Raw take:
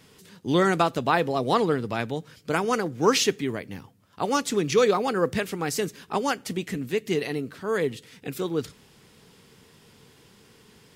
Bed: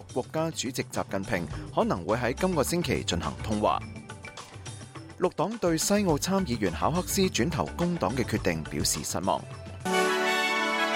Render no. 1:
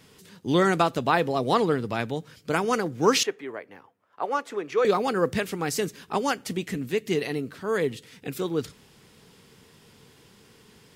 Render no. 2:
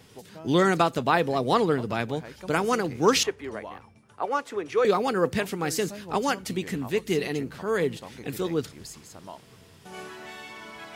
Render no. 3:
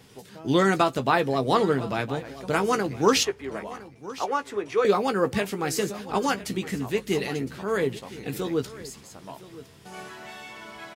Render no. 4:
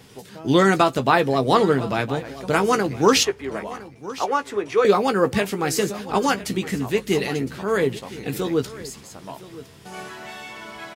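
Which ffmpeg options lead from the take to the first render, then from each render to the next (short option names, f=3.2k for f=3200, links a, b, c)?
-filter_complex "[0:a]asettb=1/sr,asplit=3[a][b][c];[a]atrim=end=3.234[d];[b]atrim=start=3.23:end=4.85,asetpts=PTS-STARTPTS,afade=t=in:d=0.004:c=qsin,afade=t=out:st=1.616:d=0.004:c=qsin,acrossover=split=390 2100:gain=0.0794 1 0.141[e][f][g];[e][f][g]amix=inputs=3:normalize=0[h];[c]atrim=start=4.846[i];[d][h]acrossfade=d=0.004:c1=hsin:c2=qsin[j];[j][i]acrossfade=d=0.004:c1=qsin:c2=hsin"
-filter_complex "[1:a]volume=-16dB[a];[0:a][a]amix=inputs=2:normalize=0"
-filter_complex "[0:a]asplit=2[a][b];[b]adelay=15,volume=-8.5dB[c];[a][c]amix=inputs=2:normalize=0,aecho=1:1:1011:0.133"
-af "volume=4.5dB,alimiter=limit=-3dB:level=0:latency=1"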